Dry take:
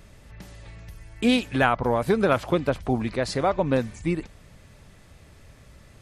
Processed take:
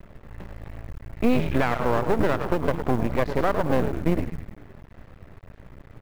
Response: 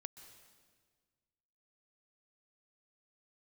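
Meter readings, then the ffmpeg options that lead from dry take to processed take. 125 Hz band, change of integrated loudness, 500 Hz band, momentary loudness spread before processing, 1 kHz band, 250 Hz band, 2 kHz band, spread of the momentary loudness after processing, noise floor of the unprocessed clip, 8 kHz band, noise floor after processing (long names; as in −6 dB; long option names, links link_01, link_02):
+1.5 dB, −0.5 dB, −0.5 dB, 6 LU, −0.5 dB, −0.5 dB, −2.5 dB, 18 LU, −51 dBFS, can't be measured, −50 dBFS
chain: -filter_complex "[0:a]lowpass=1600,asplit=7[link_01][link_02][link_03][link_04][link_05][link_06][link_07];[link_02]adelay=102,afreqshift=-93,volume=-8dB[link_08];[link_03]adelay=204,afreqshift=-186,volume=-13.4dB[link_09];[link_04]adelay=306,afreqshift=-279,volume=-18.7dB[link_10];[link_05]adelay=408,afreqshift=-372,volume=-24.1dB[link_11];[link_06]adelay=510,afreqshift=-465,volume=-29.4dB[link_12];[link_07]adelay=612,afreqshift=-558,volume=-34.8dB[link_13];[link_01][link_08][link_09][link_10][link_11][link_12][link_13]amix=inputs=7:normalize=0,aeval=exprs='max(val(0),0)':channel_layout=same,alimiter=limit=-17dB:level=0:latency=1:release=287,acrusher=bits=8:mode=log:mix=0:aa=0.000001,volume=8dB"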